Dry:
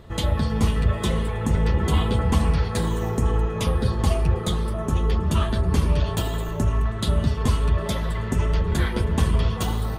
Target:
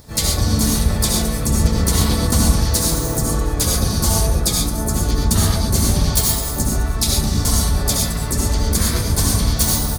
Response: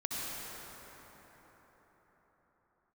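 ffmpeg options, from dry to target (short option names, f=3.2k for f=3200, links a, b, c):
-filter_complex "[0:a]asplit=3[a][b][c];[b]asetrate=29433,aresample=44100,atempo=1.49831,volume=-3dB[d];[c]asetrate=58866,aresample=44100,atempo=0.749154,volume=-5dB[e];[a][d][e]amix=inputs=3:normalize=0,aexciter=amount=7.4:drive=4.1:freq=4.1k[f];[1:a]atrim=start_sample=2205,afade=t=out:st=0.19:d=0.01,atrim=end_sample=8820[g];[f][g]afir=irnorm=-1:irlink=0"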